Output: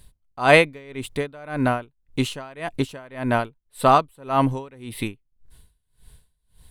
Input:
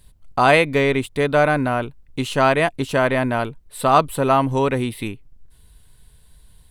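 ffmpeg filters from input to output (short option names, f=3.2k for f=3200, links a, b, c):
-af "aeval=exprs='val(0)*pow(10,-28*(0.5-0.5*cos(2*PI*1.8*n/s))/20)':c=same,volume=2dB"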